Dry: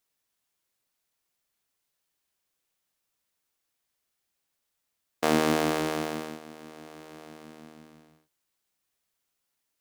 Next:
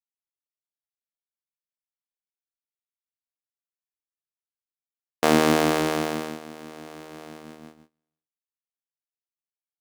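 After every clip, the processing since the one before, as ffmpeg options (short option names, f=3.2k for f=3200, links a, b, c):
-af "agate=range=-34dB:threshold=-47dB:ratio=16:detection=peak,volume=5dB"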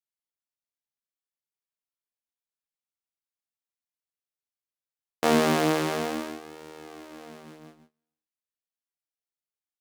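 -af "flanger=delay=15:depth=7:speed=0.3"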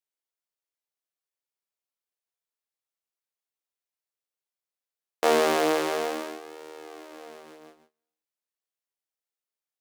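-af "lowshelf=f=280:t=q:w=1.5:g=-12"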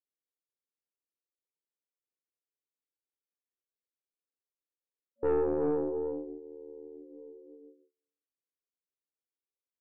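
-af "afreqshift=-20,afftfilt=real='re*between(b*sr/4096,230,560)':imag='im*between(b*sr/4096,230,560)':win_size=4096:overlap=0.75,aeval=exprs='(tanh(12.6*val(0)+0.45)-tanh(0.45))/12.6':c=same"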